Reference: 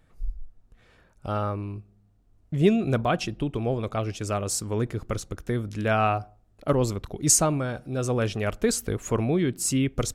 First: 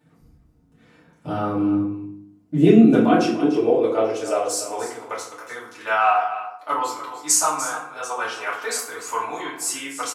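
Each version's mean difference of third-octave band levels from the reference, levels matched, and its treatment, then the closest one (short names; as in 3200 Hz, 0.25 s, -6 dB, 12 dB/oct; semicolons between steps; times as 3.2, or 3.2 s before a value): 10.0 dB: high-pass sweep 180 Hz -> 1000 Hz, 2.13–5.45; echo 0.295 s -12.5 dB; FDN reverb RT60 0.62 s, low-frequency decay 1.55×, high-frequency decay 0.65×, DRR -8.5 dB; gain -5.5 dB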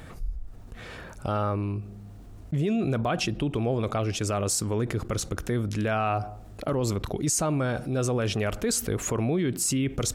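4.0 dB: limiter -18.5 dBFS, peak gain reduction 11.5 dB; HPF 47 Hz 6 dB/oct; fast leveller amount 50%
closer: second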